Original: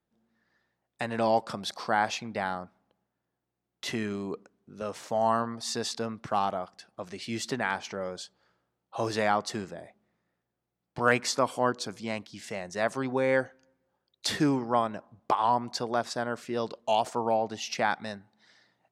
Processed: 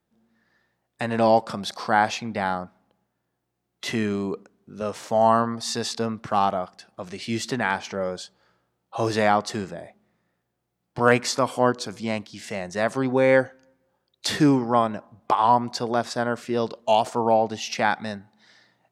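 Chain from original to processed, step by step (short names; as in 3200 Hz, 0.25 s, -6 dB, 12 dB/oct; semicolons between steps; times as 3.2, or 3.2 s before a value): harmonic-percussive split harmonic +5 dB; gain +3 dB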